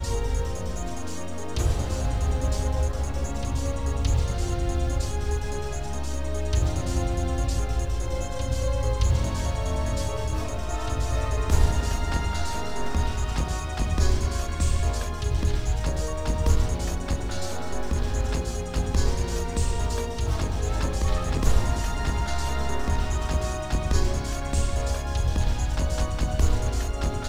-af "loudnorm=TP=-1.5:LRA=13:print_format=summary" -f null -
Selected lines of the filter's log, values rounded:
Input Integrated:    -27.7 LUFS
Input True Peak:      -6.9 dBTP
Input LRA:             1.5 LU
Input Threshold:     -37.7 LUFS